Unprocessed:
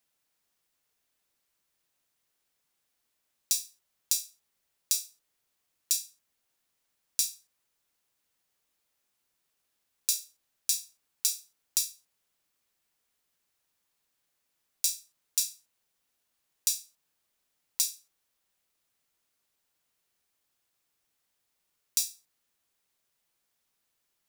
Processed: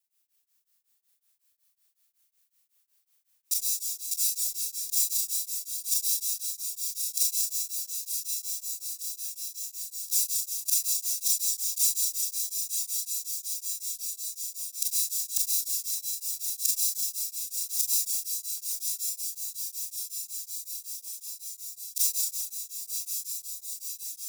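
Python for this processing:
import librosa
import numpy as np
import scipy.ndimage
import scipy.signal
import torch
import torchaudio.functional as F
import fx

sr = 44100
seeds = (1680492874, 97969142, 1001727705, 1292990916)

p1 = fx.local_reverse(x, sr, ms=30.0)
p2 = fx.tilt_eq(p1, sr, slope=4.0)
p3 = p2 + fx.echo_diffused(p2, sr, ms=1009, feedback_pct=73, wet_db=-5, dry=0)
p4 = fx.rev_schroeder(p3, sr, rt60_s=2.4, comb_ms=29, drr_db=-8.5)
p5 = p4 * np.abs(np.cos(np.pi * 5.4 * np.arange(len(p4)) / sr))
y = F.gain(torch.from_numpy(p5), -13.0).numpy()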